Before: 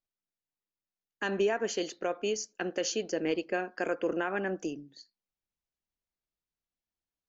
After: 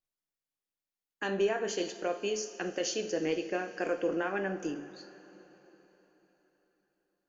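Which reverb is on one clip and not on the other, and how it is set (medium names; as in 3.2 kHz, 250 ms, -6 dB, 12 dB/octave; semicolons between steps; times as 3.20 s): two-slope reverb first 0.43 s, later 4.2 s, from -16 dB, DRR 5 dB; trim -2 dB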